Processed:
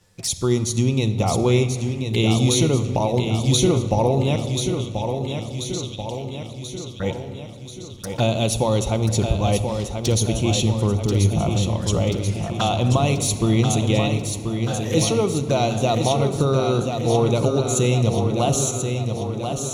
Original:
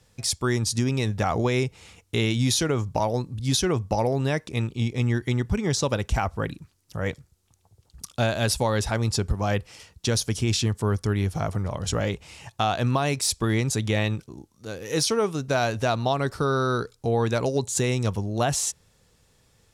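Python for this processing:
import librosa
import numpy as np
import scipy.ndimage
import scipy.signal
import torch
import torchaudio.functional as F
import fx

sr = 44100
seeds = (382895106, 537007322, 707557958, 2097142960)

y = fx.env_flanger(x, sr, rest_ms=11.9, full_db=-24.5)
y = fx.ladder_highpass(y, sr, hz=3000.0, resonance_pct=50, at=(4.36, 7.0))
y = fx.echo_feedback(y, sr, ms=1035, feedback_pct=58, wet_db=-6.5)
y = fx.room_shoebox(y, sr, seeds[0], volume_m3=3900.0, walls='mixed', distance_m=0.85)
y = F.gain(torch.from_numpy(y), 4.5).numpy()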